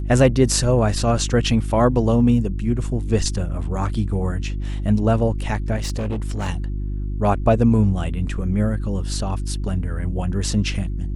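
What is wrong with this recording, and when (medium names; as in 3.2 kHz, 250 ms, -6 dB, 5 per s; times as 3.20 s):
hum 50 Hz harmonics 7 -25 dBFS
5.76–6.49 s: clipped -20.5 dBFS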